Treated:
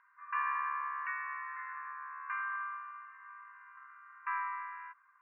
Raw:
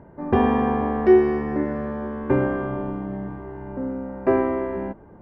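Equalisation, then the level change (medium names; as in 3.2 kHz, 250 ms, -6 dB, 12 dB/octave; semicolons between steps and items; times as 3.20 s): brick-wall FIR band-pass 980–2800 Hz; distance through air 280 m; -1.0 dB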